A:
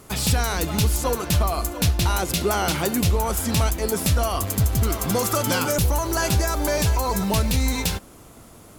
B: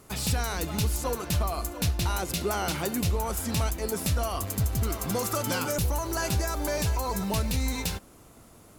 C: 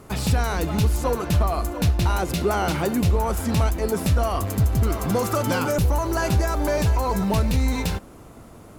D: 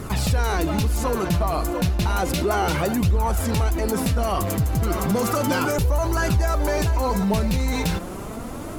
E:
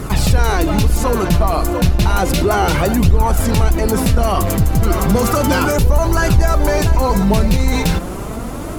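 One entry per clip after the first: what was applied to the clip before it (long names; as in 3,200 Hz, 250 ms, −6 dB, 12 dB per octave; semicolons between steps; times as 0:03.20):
notch filter 3,300 Hz, Q 29; level −6.5 dB
high-shelf EQ 2,700 Hz −10 dB; in parallel at −8 dB: soft clipping −36 dBFS, distortion −6 dB; on the sum: level +6.5 dB
flanger 0.32 Hz, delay 0.5 ms, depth 6.1 ms, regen +40%; envelope flattener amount 50%
sub-octave generator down 2 octaves, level −2 dB; level +6.5 dB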